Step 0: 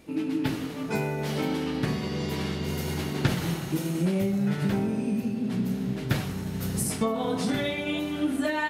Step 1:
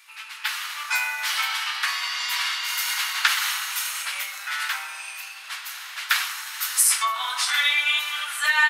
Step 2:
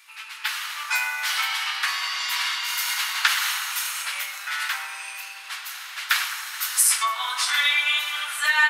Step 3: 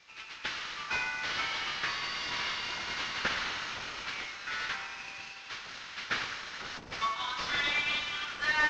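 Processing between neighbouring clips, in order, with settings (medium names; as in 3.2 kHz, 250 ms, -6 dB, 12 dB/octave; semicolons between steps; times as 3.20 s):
steep high-pass 1.1 kHz 36 dB/octave; level rider gain up to 5.5 dB; trim +8 dB
filtered feedback delay 107 ms, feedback 80%, low-pass 3.6 kHz, level -13.5 dB
CVSD coder 32 kbps; trim -7 dB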